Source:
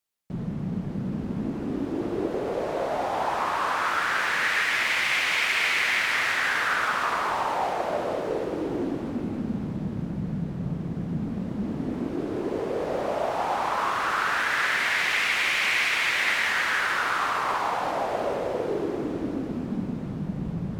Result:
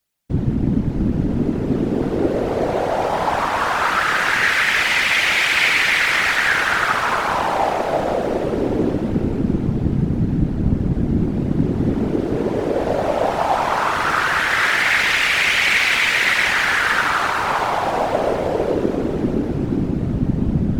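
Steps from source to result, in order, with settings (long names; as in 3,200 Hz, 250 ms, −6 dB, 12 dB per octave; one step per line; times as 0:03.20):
parametric band 63 Hz +10 dB 2.3 octaves
notch filter 1,100 Hz, Q 11
random phases in short frames
level +7.5 dB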